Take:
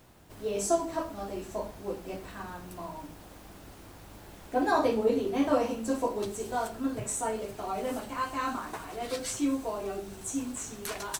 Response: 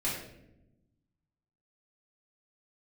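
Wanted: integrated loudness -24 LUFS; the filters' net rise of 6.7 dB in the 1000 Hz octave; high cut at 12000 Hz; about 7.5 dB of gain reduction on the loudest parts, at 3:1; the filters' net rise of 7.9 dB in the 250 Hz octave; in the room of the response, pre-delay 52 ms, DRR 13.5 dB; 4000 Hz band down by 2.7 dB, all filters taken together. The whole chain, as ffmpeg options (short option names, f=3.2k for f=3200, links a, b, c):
-filter_complex "[0:a]lowpass=12k,equalizer=f=250:t=o:g=8.5,equalizer=f=1k:t=o:g=8,equalizer=f=4k:t=o:g=-4,acompressor=threshold=-24dB:ratio=3,asplit=2[a][b];[1:a]atrim=start_sample=2205,adelay=52[c];[b][c]afir=irnorm=-1:irlink=0,volume=-19.5dB[d];[a][d]amix=inputs=2:normalize=0,volume=5.5dB"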